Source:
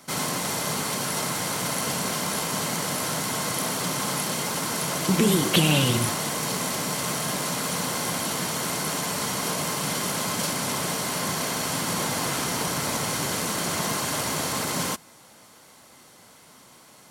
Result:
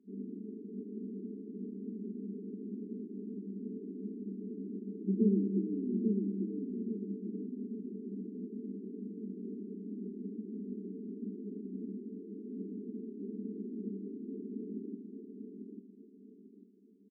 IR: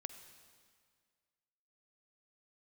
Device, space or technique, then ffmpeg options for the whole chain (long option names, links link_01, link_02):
stairwell: -filter_complex "[1:a]atrim=start_sample=2205[link_01];[0:a][link_01]afir=irnorm=-1:irlink=0,asettb=1/sr,asplit=3[link_02][link_03][link_04];[link_02]atrim=end=11.954[link_05];[link_03]atrim=start=11.95:end=12.54,asetpts=PTS-STARTPTS,afade=type=in:duration=0.004:curve=qsin,afade=type=out:start_time=0.586:duration=0.004:curve=qsin,aemphasis=mode=production:type=bsi[link_06];[link_04]atrim=start=12.536[link_07];[link_05][link_06]acrossfade=duration=0.004:curve1=hsin:curve2=qsin[link_08];[link_08][link_07]acrossfade=duration=0.004:curve1=qsin:curve2=hsin,afftfilt=real='re*between(b*sr/4096,190,450)':imag='im*between(b*sr/4096,190,450)':win_size=4096:overlap=0.75,equalizer=frequency=340:width=0.87:gain=-15,aecho=1:1:844|1688|2532|3376:0.562|0.191|0.065|0.0221,volume=8dB"